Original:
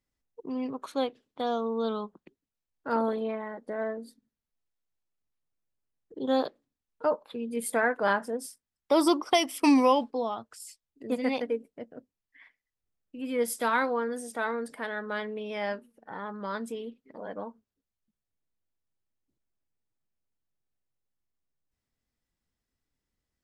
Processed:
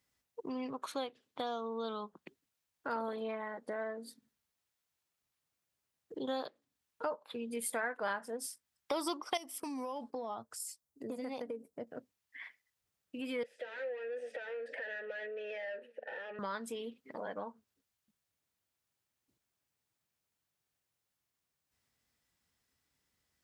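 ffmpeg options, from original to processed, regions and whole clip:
ffmpeg -i in.wav -filter_complex "[0:a]asettb=1/sr,asplit=3[link_01][link_02][link_03];[link_01]atrim=end=9.374[link_04];[link_02]atrim=start=9.37:end=11.87,asetpts=PTS-STARTPTS,afade=type=in:duration=0.004:curve=qsin,afade=type=out:start_time=2.496:duration=0.004:curve=qsin,equalizer=frequency=2600:width_type=o:width=1.9:gain=-12,acompressor=threshold=-31dB:ratio=10:attack=3.2:release=140:knee=1:detection=peak[link_05];[link_03]atrim=start=11.866[link_06];[link_04][link_05]acrossfade=duration=0.004:curve1=hsin:curve2=qsin[link_07];[link_07][link_06]acrossfade=duration=0.004:curve1=qsin:curve2=hsin,asettb=1/sr,asplit=3[link_08][link_09][link_10];[link_08]atrim=end=13.434[link_11];[link_09]atrim=start=13.43:end=16.39,asetpts=PTS-STARTPTS,afade=type=in:duration=0.004:curve=qsin,afade=type=out:start_time=2.956:duration=0.004:curve=qsin,acompressor=threshold=-44dB:ratio=3:attack=3.2:release=140:knee=1:detection=peak,asplit=2[link_12][link_13];[link_13]highpass=frequency=720:poles=1,volume=30dB,asoftclip=type=tanh:threshold=-20.5dB[link_14];[link_12][link_14]amix=inputs=2:normalize=0,lowpass=frequency=1700:poles=1,volume=-6dB,asplit=3[link_15][link_16][link_17];[link_15]bandpass=frequency=530:width_type=q:width=8,volume=0dB[link_18];[link_16]bandpass=frequency=1840:width_type=q:width=8,volume=-6dB[link_19];[link_17]bandpass=frequency=2480:width_type=q:width=8,volume=-9dB[link_20];[link_18][link_19][link_20]amix=inputs=3:normalize=0[link_21];[link_10]atrim=start=16.386[link_22];[link_11][link_21]acrossfade=duration=0.004:curve1=hsin:curve2=qsin[link_23];[link_23][link_22]acrossfade=duration=0.004:curve1=qsin:curve2=hsin,highpass=96,equalizer=frequency=260:width=0.49:gain=-7.5,acompressor=threshold=-49dB:ratio=2.5,volume=8dB" out.wav

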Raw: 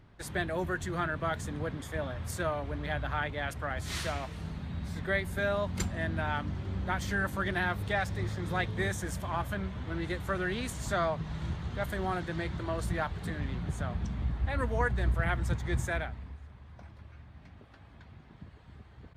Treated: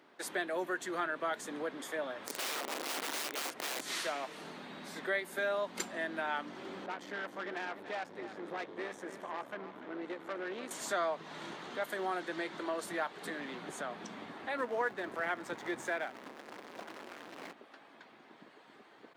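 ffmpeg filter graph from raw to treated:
ffmpeg -i in.wav -filter_complex "[0:a]asettb=1/sr,asplit=3[link_01][link_02][link_03];[link_01]atrim=end=2.274[link_04];[link_02]atrim=start=2.27:end=3.81,asetpts=PTS-STARTPTS,afade=type=in:duration=0.004:curve=qsin,afade=type=out:start_time=1.536:duration=0.004:curve=qsin,acrossover=split=4300[link_05][link_06];[link_06]acompressor=threshold=-54dB:ratio=4:attack=1:release=60[link_07];[link_05][link_07]amix=inputs=2:normalize=0,aeval=exprs='(mod(37.6*val(0)+1,2)-1)/37.6':channel_layout=same[link_08];[link_03]atrim=start=3.806[link_09];[link_04][link_08]acrossfade=duration=0.004:curve1=hsin:curve2=qsin[link_10];[link_10][link_09]acrossfade=duration=0.004:curve1=qsin:curve2=hsin,asettb=1/sr,asplit=3[link_11][link_12][link_13];[link_11]atrim=end=6.864[link_14];[link_12]atrim=start=6.86:end=10.71,asetpts=PTS-STARTPTS,afade=type=in:duration=0.004:curve=qsin,afade=type=out:start_time=3.846:duration=0.004:curve=qsin,lowpass=frequency=1200:poles=1,aeval=exprs='(tanh(44.7*val(0)+0.65)-tanh(0.65))/44.7':channel_layout=same,aecho=1:1:294:0.211,atrim=end_sample=169785[link_15];[link_13]atrim=start=10.706[link_16];[link_14][link_15]acrossfade=duration=0.004:curve1=hsin:curve2=qsin[link_17];[link_17][link_16]acrossfade=duration=0.004:curve1=qsin:curve2=hsin,asettb=1/sr,asplit=3[link_18][link_19][link_20];[link_18]atrim=end=14.574[link_21];[link_19]atrim=start=14.57:end=17.53,asetpts=PTS-STARTPTS,afade=type=in:duration=0.004:curve=qsin,afade=type=out:start_time=2.956:duration=0.004:curve=qsin,aeval=exprs='val(0)+0.5*0.01*sgn(val(0))':channel_layout=same,lowpass=frequency=2900:poles=1[link_22];[link_20]atrim=start=17.526[link_23];[link_21][link_22]acrossfade=duration=0.004:curve1=hsin:curve2=qsin[link_24];[link_24][link_23]acrossfade=duration=0.004:curve1=qsin:curve2=hsin,highpass=frequency=290:width=0.5412,highpass=frequency=290:width=1.3066,acompressor=threshold=-43dB:ratio=1.5,volume=3dB" out.wav

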